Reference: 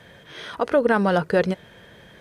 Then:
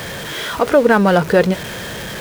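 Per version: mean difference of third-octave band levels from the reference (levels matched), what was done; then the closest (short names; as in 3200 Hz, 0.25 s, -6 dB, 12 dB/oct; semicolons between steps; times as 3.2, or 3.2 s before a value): 9.5 dB: zero-crossing step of -29.5 dBFS; gain +6 dB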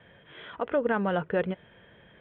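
2.5 dB: steep low-pass 3400 Hz 72 dB/oct; gain -7.5 dB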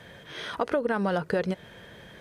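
4.0 dB: compressor 6:1, threshold -23 dBFS, peak gain reduction 9.5 dB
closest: second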